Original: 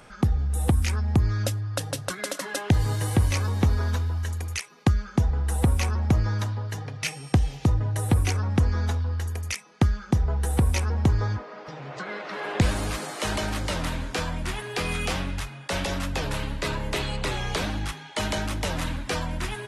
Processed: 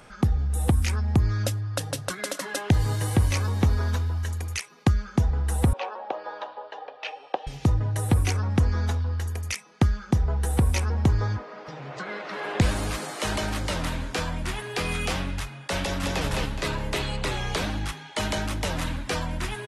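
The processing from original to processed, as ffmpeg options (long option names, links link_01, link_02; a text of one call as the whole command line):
ffmpeg -i in.wav -filter_complex "[0:a]asettb=1/sr,asplit=3[link_01][link_02][link_03];[link_01]atrim=end=5.734[link_04];[link_02]atrim=start=5.73:end=7.47,asetpts=PTS-STARTPTS,afade=type=in:duration=0.004:curve=qsin,afade=type=out:start_time=1.736:duration=0.004:curve=qsin,highpass=frequency=450:width=0.5412,highpass=frequency=450:width=1.3066,equalizer=frequency=560:width_type=q:width=4:gain=7,equalizer=frequency=820:width_type=q:width=4:gain=7,equalizer=frequency=1400:width_type=q:width=4:gain=-3,equalizer=frequency=2100:width_type=q:width=4:gain=-10,lowpass=frequency=3400:width=0.5412,lowpass=frequency=3400:width=1.3066[link_05];[link_03]atrim=start=7.466[link_06];[link_04][link_05]acrossfade=duration=0.004:curve1=hsin:curve2=qsin[link_07];[link_07][link_06]acrossfade=duration=0.004:curve1=qsin:curve2=hsin,asplit=2[link_08][link_09];[link_09]afade=type=in:start_time=15.82:duration=0.01,afade=type=out:start_time=16.24:duration=0.01,aecho=0:1:210|420|630|840|1050:0.794328|0.278015|0.0973052|0.0340568|0.0119199[link_10];[link_08][link_10]amix=inputs=2:normalize=0" out.wav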